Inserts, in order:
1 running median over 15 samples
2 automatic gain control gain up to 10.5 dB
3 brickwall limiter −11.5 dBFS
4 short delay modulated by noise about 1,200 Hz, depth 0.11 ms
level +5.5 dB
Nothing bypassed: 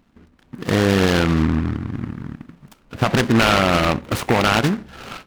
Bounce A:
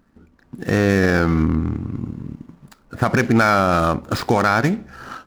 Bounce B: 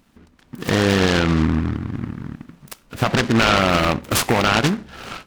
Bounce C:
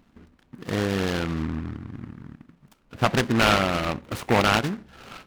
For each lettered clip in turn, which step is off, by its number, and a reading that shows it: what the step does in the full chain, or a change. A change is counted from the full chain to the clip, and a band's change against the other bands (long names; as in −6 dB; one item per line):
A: 4, 4 kHz band −9.0 dB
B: 1, 8 kHz band +4.0 dB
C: 2, change in crest factor +6.5 dB